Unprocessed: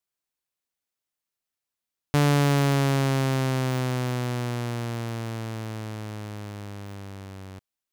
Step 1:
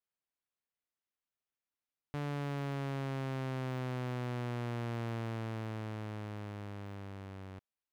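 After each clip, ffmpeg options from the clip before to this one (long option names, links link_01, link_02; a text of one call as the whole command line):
ffmpeg -i in.wav -af "bass=frequency=250:gain=-1,treble=frequency=4000:gain=-11,alimiter=level_in=1.5dB:limit=-24dB:level=0:latency=1,volume=-1.5dB,volume=-5.5dB" out.wav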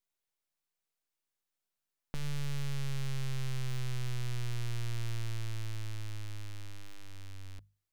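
ffmpeg -i in.wav -af "aeval=exprs='abs(val(0))':channel_layout=same,bandreject=frequency=50:width_type=h:width=6,bandreject=frequency=100:width_type=h:width=6,bandreject=frequency=150:width_type=h:width=6,bandreject=frequency=200:width_type=h:width=6,volume=6dB" out.wav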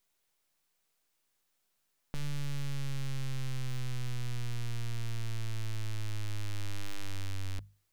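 ffmpeg -i in.wav -af "alimiter=level_in=12.5dB:limit=-24dB:level=0:latency=1:release=12,volume=-12.5dB,volume=10.5dB" out.wav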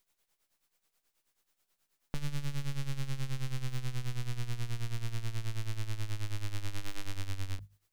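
ffmpeg -i in.wav -af "tremolo=f=9.3:d=0.74,volume=3.5dB" out.wav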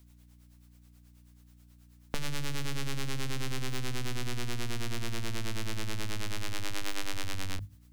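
ffmpeg -i in.wav -filter_complex "[0:a]aeval=exprs='val(0)+0.000631*(sin(2*PI*60*n/s)+sin(2*PI*2*60*n/s)/2+sin(2*PI*3*60*n/s)/3+sin(2*PI*4*60*n/s)/4+sin(2*PI*5*60*n/s)/5)':channel_layout=same,acrossover=split=240[link_01][link_02];[link_01]asoftclip=type=hard:threshold=-35.5dB[link_03];[link_03][link_02]amix=inputs=2:normalize=0,volume=8dB" out.wav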